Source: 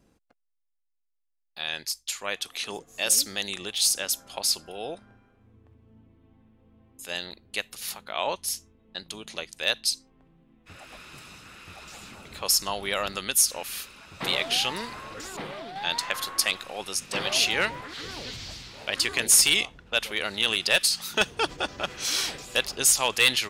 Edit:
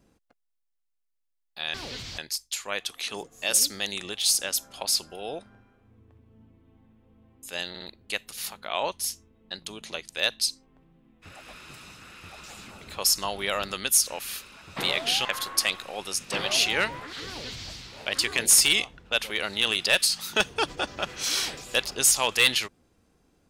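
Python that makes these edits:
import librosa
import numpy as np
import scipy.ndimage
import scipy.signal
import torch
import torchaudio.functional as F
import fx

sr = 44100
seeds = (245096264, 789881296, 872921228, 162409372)

y = fx.edit(x, sr, fx.stutter(start_s=7.25, slice_s=0.06, count=3),
    fx.cut(start_s=14.69, length_s=1.37),
    fx.duplicate(start_s=18.08, length_s=0.44, to_s=1.74), tone=tone)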